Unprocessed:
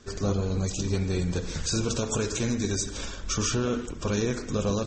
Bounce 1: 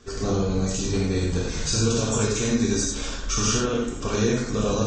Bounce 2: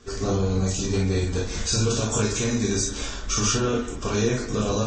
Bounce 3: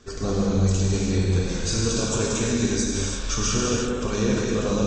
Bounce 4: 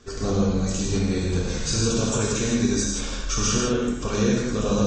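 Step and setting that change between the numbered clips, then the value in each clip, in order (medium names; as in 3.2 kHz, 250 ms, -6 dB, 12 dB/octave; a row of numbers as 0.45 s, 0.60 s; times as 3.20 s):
gated-style reverb, gate: 130 ms, 80 ms, 380 ms, 200 ms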